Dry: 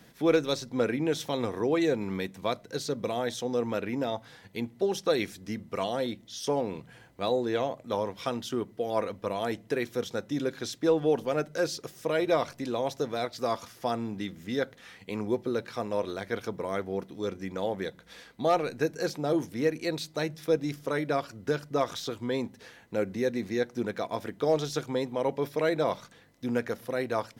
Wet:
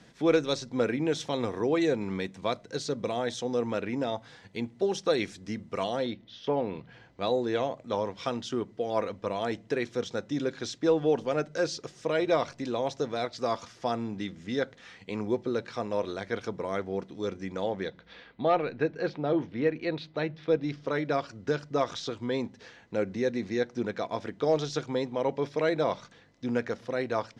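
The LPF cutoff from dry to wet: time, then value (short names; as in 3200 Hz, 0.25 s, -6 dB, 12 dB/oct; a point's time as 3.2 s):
LPF 24 dB/oct
5.9 s 8200 Hz
6.39 s 3200 Hz
7.36 s 7400 Hz
17.61 s 7400 Hz
18.26 s 3600 Hz
20.32 s 3600 Hz
21.21 s 6700 Hz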